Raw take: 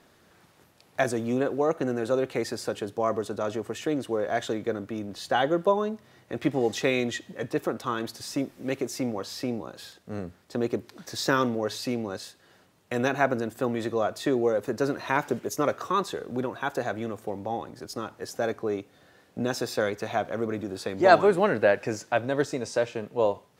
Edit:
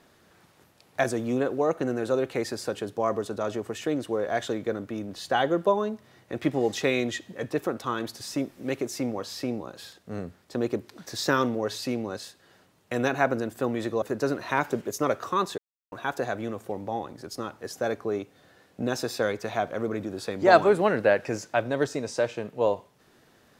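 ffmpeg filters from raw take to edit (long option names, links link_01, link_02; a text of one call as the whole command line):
ffmpeg -i in.wav -filter_complex "[0:a]asplit=4[link_01][link_02][link_03][link_04];[link_01]atrim=end=14.022[link_05];[link_02]atrim=start=14.598:end=16.16,asetpts=PTS-STARTPTS,afade=type=out:start_time=1.558:duration=0.004:curve=hsin[link_06];[link_03]atrim=start=16.16:end=16.5,asetpts=PTS-STARTPTS,volume=0[link_07];[link_04]atrim=start=16.5,asetpts=PTS-STARTPTS,afade=type=in:duration=0.004:curve=hsin[link_08];[link_06][link_07][link_08]concat=n=3:v=0:a=1[link_09];[link_05][link_09]acrossfade=duration=0.004:curve1=hsin:curve2=hsin" out.wav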